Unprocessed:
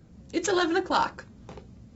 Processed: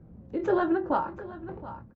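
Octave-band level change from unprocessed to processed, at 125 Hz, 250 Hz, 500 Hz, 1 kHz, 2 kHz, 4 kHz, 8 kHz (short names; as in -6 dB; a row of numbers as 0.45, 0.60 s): +1.5 dB, +0.5 dB, +1.0 dB, -2.5 dB, -7.0 dB, under -20 dB, n/a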